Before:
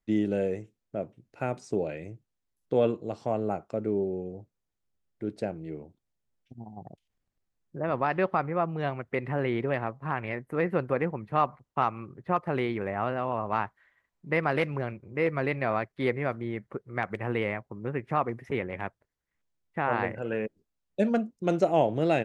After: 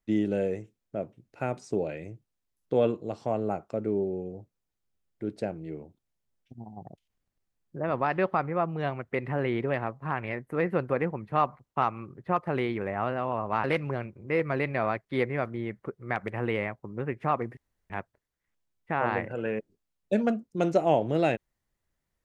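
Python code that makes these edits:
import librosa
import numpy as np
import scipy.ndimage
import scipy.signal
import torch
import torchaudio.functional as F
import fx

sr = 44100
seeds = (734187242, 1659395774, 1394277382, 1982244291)

y = fx.edit(x, sr, fx.cut(start_s=13.64, length_s=0.87),
    fx.room_tone_fill(start_s=18.44, length_s=0.33), tone=tone)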